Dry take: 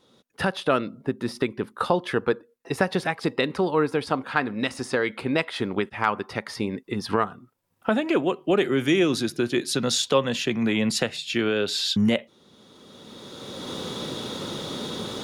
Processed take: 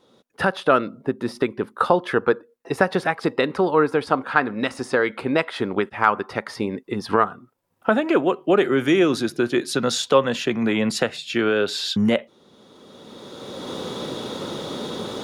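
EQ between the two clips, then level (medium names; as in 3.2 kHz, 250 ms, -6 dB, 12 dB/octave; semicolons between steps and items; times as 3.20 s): dynamic bell 1.4 kHz, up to +5 dB, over -40 dBFS, Q 2; peaking EQ 580 Hz +6 dB 2.8 oct; -1.5 dB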